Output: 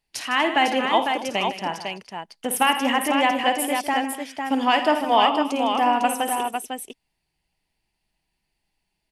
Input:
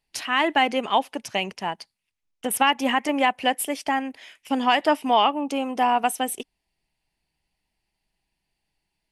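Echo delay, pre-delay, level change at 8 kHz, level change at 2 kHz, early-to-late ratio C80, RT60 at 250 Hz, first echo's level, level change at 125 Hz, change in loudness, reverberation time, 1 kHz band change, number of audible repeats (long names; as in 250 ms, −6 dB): 53 ms, no reverb audible, +1.5 dB, +1.5 dB, no reverb audible, no reverb audible, −11.0 dB, can't be measured, +1.5 dB, no reverb audible, +2.0 dB, 5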